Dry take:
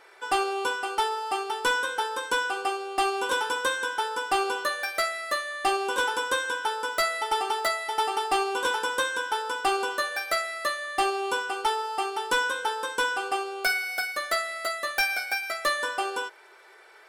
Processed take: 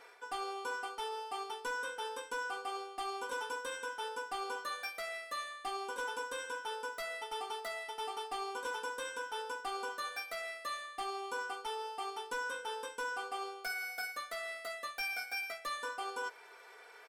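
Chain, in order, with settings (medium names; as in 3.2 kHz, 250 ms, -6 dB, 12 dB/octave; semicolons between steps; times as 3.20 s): reverse; compression 6:1, threshold -35 dBFS, peak gain reduction 13.5 dB; reverse; comb 4.2 ms, depth 61%; trim -3.5 dB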